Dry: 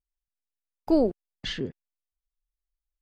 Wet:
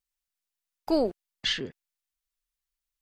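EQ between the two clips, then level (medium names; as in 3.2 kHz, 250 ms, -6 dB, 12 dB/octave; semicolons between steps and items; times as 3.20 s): tilt shelf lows -7 dB, about 710 Hz; 0.0 dB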